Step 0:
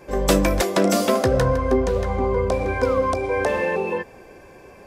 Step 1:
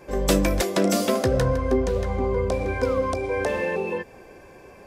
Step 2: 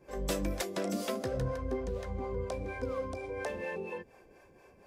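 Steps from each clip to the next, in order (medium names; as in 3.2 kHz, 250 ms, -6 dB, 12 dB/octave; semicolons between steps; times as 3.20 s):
dynamic bell 1 kHz, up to -4 dB, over -34 dBFS, Q 0.84; trim -1.5 dB
harmonic tremolo 4.2 Hz, depth 70%, crossover 450 Hz; trim -9 dB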